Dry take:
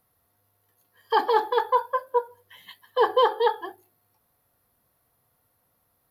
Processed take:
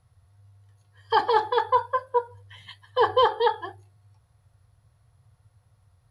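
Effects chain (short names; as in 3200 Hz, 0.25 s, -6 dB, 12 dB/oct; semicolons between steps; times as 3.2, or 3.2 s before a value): elliptic low-pass 10000 Hz, stop band 50 dB; resonant low shelf 160 Hz +13 dB, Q 3; gain +2 dB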